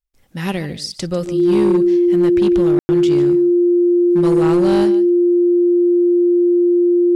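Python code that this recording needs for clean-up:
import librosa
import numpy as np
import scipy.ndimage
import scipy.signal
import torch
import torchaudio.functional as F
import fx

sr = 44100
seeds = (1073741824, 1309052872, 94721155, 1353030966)

y = fx.fix_declip(x, sr, threshold_db=-9.0)
y = fx.notch(y, sr, hz=350.0, q=30.0)
y = fx.fix_ambience(y, sr, seeds[0], print_start_s=0.01, print_end_s=0.51, start_s=2.79, end_s=2.89)
y = fx.fix_echo_inverse(y, sr, delay_ms=147, level_db=-15.5)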